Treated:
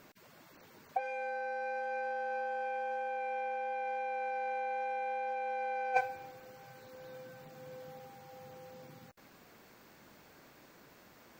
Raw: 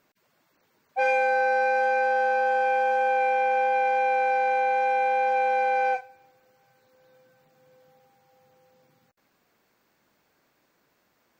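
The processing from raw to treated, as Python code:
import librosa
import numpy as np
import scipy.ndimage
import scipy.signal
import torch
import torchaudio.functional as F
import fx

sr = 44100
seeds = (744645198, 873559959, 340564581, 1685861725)

y = fx.low_shelf(x, sr, hz=340.0, db=4.0)
y = fx.over_compress(y, sr, threshold_db=-30.0, ratio=-0.5)
y = F.gain(torch.from_numpy(y), -2.5).numpy()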